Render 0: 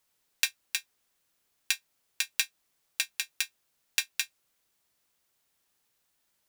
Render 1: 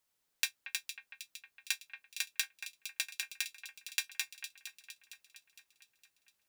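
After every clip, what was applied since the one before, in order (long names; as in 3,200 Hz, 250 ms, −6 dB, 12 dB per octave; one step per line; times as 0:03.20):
delay that swaps between a low-pass and a high-pass 230 ms, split 2,400 Hz, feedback 71%, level −7.5 dB
level −6 dB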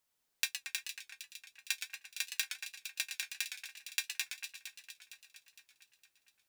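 feedback echo with a swinging delay time 116 ms, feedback 50%, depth 127 cents, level −8 dB
level −1 dB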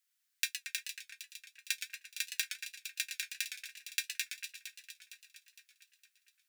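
Chebyshev high-pass filter 1,600 Hz, order 3
level +1 dB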